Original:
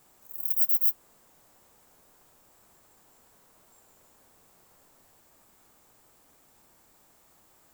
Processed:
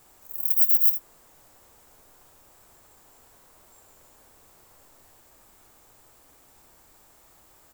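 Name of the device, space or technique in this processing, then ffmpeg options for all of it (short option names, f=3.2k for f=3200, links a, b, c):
low shelf boost with a cut just above: -af "lowshelf=f=83:g=6.5,equalizer=f=190:t=o:w=0.85:g=-5,aecho=1:1:75:0.282,volume=4.5dB"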